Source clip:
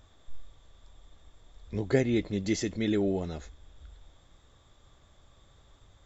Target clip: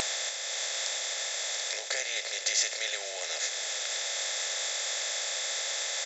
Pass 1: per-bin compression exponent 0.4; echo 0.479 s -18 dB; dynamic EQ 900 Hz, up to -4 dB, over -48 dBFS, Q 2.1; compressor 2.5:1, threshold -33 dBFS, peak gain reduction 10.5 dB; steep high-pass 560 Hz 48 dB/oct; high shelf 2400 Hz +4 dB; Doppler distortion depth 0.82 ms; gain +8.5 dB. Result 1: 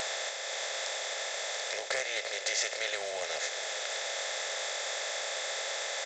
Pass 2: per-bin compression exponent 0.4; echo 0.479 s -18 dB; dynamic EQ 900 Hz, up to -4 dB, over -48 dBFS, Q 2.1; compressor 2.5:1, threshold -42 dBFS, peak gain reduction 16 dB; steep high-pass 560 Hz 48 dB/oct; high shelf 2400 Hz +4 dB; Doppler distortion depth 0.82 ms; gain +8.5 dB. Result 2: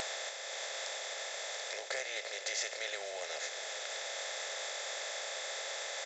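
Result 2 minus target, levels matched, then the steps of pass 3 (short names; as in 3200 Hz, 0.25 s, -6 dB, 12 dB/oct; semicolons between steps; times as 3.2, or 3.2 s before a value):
2000 Hz band +3.0 dB
per-bin compression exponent 0.4; echo 0.479 s -18 dB; dynamic EQ 900 Hz, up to -4 dB, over -48 dBFS, Q 2.1; compressor 2.5:1, threshold -42 dBFS, peak gain reduction 16 dB; steep high-pass 560 Hz 48 dB/oct; high shelf 2400 Hz +16 dB; Doppler distortion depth 0.82 ms; gain +8.5 dB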